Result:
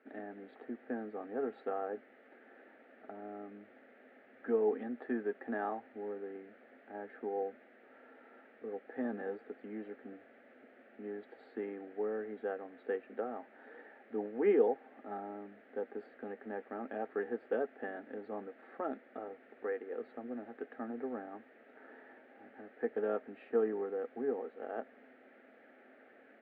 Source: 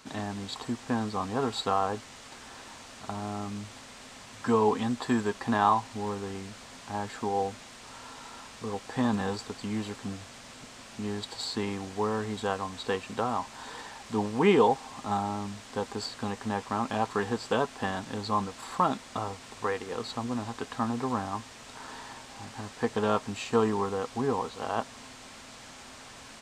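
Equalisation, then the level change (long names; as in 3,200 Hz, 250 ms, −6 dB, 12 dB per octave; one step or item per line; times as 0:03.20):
elliptic band-pass filter 200–1,800 Hz, stop band 50 dB
phaser with its sweep stopped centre 420 Hz, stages 4
−4.0 dB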